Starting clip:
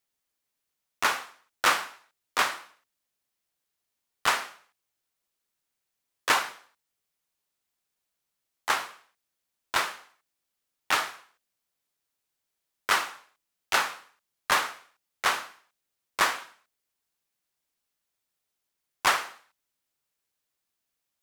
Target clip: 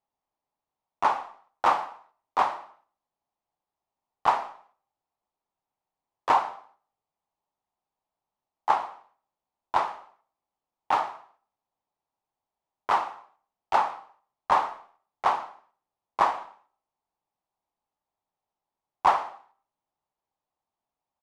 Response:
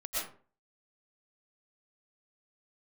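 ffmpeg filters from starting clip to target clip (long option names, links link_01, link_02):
-filter_complex "[0:a]firequalizer=gain_entry='entry(500,0);entry(830,11);entry(1500,-9);entry(13000,-28)':delay=0.05:min_phase=1,asplit=2[link_01][link_02];[1:a]atrim=start_sample=2205[link_03];[link_02][link_03]afir=irnorm=-1:irlink=0,volume=-24.5dB[link_04];[link_01][link_04]amix=inputs=2:normalize=0"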